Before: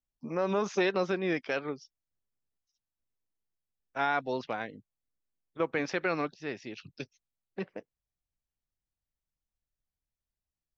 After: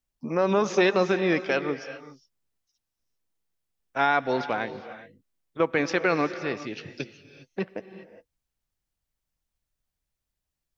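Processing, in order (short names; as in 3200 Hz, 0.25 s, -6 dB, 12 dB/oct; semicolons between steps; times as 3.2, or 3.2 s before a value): non-linear reverb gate 0.43 s rising, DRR 12 dB; gain +6.5 dB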